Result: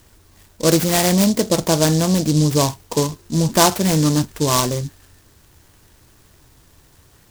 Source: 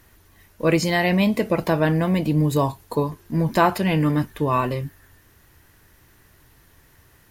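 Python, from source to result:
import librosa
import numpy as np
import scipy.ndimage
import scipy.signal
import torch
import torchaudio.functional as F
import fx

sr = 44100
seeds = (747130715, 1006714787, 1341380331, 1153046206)

y = fx.noise_mod_delay(x, sr, seeds[0], noise_hz=5500.0, depth_ms=0.12)
y = y * 10.0 ** (3.5 / 20.0)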